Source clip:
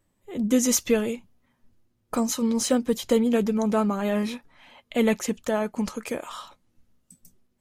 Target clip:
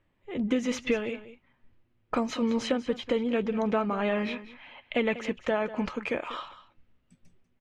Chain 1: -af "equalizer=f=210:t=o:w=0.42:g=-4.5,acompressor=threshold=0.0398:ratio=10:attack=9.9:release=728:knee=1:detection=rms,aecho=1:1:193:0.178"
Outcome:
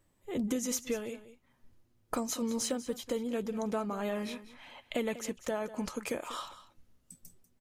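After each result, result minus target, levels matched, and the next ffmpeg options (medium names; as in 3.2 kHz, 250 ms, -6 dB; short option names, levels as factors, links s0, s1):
compression: peak gain reduction +6.5 dB; 2 kHz band -4.0 dB
-af "equalizer=f=210:t=o:w=0.42:g=-4.5,acompressor=threshold=0.0944:ratio=10:attack=9.9:release=728:knee=1:detection=rms,aecho=1:1:193:0.178"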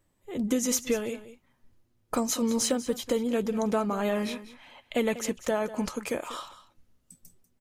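2 kHz band -4.5 dB
-af "lowpass=f=2600:t=q:w=1.7,equalizer=f=210:t=o:w=0.42:g=-4.5,acompressor=threshold=0.0944:ratio=10:attack=9.9:release=728:knee=1:detection=rms,aecho=1:1:193:0.178"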